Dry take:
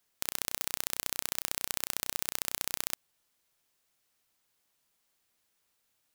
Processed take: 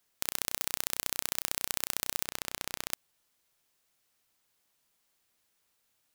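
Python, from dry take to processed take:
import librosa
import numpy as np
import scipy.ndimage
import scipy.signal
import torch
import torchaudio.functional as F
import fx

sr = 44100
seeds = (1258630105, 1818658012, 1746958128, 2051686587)

y = fx.high_shelf(x, sr, hz=6000.0, db=-8.5, at=(2.25, 2.92))
y = F.gain(torch.from_numpy(y), 1.0).numpy()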